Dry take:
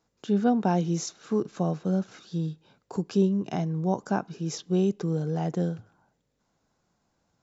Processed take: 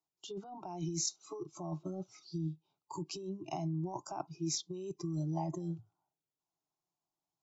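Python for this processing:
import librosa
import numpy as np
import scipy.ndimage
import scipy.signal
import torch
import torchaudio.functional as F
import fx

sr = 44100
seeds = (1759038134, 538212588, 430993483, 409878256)

y = fx.noise_reduce_blind(x, sr, reduce_db=18)
y = fx.low_shelf(y, sr, hz=180.0, db=-11.5)
y = fx.over_compress(y, sr, threshold_db=-35.0, ratio=-1.0)
y = fx.fixed_phaser(y, sr, hz=340.0, stages=8)
y = y * librosa.db_to_amplitude(-1.5)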